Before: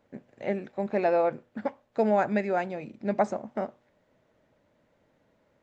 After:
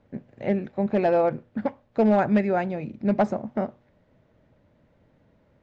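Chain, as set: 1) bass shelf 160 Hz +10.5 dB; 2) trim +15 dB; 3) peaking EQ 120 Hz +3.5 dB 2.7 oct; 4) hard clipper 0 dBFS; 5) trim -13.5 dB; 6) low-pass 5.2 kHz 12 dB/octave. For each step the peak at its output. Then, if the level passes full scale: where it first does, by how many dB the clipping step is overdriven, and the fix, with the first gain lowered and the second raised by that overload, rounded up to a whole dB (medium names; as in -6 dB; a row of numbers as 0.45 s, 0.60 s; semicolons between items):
-11.5 dBFS, +3.5 dBFS, +4.5 dBFS, 0.0 dBFS, -13.5 dBFS, -13.5 dBFS; step 2, 4.5 dB; step 2 +10 dB, step 5 -8.5 dB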